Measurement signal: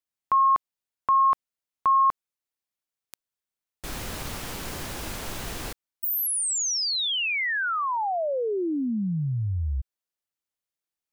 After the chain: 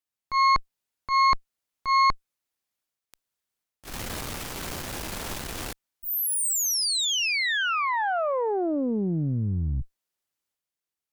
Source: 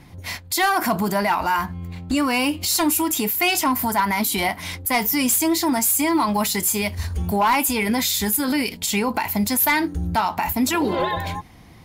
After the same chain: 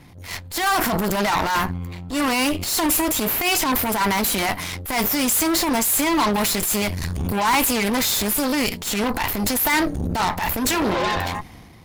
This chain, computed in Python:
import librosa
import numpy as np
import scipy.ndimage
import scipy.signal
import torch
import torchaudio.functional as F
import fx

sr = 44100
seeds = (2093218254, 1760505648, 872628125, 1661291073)

y = fx.cheby_harmonics(x, sr, harmonics=(6,), levels_db=(-12,), full_scale_db=-12.0)
y = fx.transient(y, sr, attack_db=-12, sustain_db=5)